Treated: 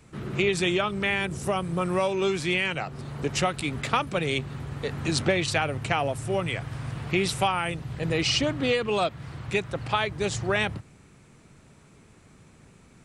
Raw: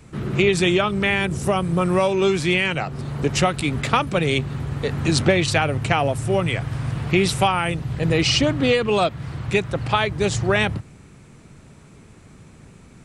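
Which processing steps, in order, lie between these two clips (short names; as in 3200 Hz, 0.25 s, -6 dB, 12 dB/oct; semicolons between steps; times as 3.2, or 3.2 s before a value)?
low shelf 320 Hz -4 dB; gain -5 dB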